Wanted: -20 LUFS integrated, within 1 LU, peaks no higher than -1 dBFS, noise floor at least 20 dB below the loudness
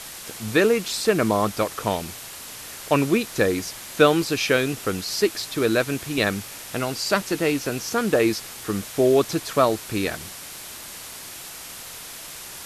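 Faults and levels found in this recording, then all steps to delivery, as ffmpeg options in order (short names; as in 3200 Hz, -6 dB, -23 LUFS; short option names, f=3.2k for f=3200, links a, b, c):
noise floor -38 dBFS; noise floor target -43 dBFS; loudness -23.0 LUFS; peak -2.5 dBFS; loudness target -20.0 LUFS
-> -af "afftdn=nr=6:nf=-38"
-af "volume=3dB,alimiter=limit=-1dB:level=0:latency=1"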